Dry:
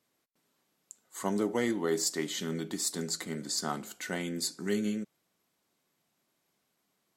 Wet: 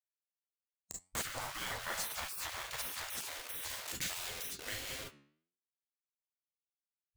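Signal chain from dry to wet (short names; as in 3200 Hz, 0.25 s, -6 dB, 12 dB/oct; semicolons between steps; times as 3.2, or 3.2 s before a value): level-crossing sampler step -36 dBFS; bell 840 Hz +4.5 dB 1.9 oct, from 3.23 s -10.5 dB; reverb, pre-delay 32 ms, DRR 2 dB; flange 0.67 Hz, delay 6.7 ms, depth 7.6 ms, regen +85%; low shelf 120 Hz +4 dB; compressor 2:1, threshold -41 dBFS, peak gain reduction 8.5 dB; spectral gate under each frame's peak -20 dB weak; gain +11 dB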